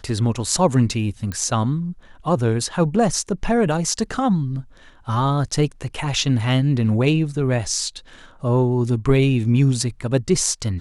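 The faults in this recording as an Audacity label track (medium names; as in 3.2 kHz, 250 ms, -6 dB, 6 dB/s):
1.320000	1.320000	pop -15 dBFS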